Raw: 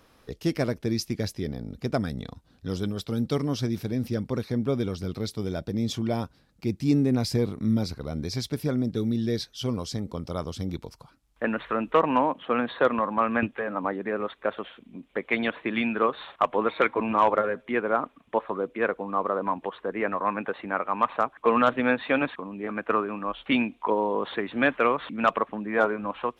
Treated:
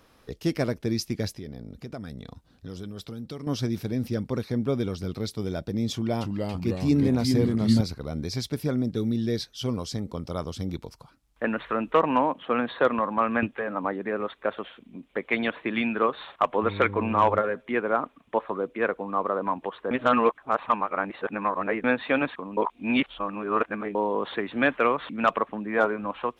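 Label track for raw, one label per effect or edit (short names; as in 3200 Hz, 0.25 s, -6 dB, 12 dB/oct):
1.340000	3.470000	compressor 3:1, threshold -36 dBFS
5.930000	7.810000	echoes that change speed 0.279 s, each echo -2 st, echoes 3
16.620000	17.380000	buzz 100 Hz, harmonics 5, -35 dBFS -5 dB/oct
19.910000	21.840000	reverse
22.570000	23.950000	reverse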